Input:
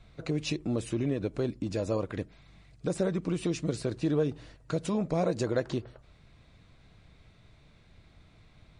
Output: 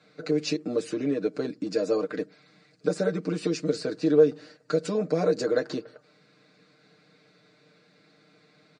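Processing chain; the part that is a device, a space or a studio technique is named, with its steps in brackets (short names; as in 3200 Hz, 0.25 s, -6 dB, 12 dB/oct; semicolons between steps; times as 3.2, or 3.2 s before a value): television speaker (speaker cabinet 190–8400 Hz, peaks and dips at 220 Hz +4 dB, 470 Hz +7 dB, 940 Hz -6 dB, 1500 Hz +6 dB, 3200 Hz -6 dB, 4600 Hz +8 dB); comb 6.6 ms, depth 76%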